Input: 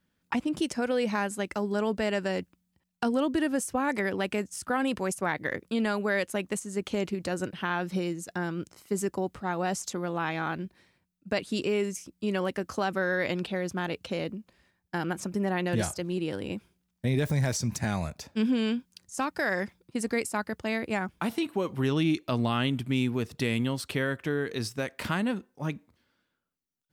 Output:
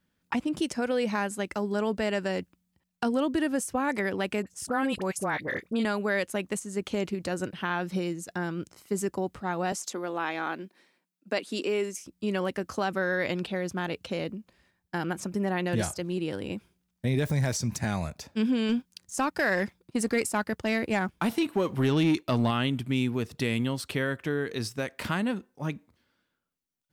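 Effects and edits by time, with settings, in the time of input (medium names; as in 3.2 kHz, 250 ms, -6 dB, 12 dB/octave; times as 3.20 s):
4.42–5.85 s: phase dispersion highs, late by 48 ms, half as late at 1.2 kHz
9.72–12.06 s: high-pass 230 Hz 24 dB/octave
18.69–22.51 s: waveshaping leveller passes 1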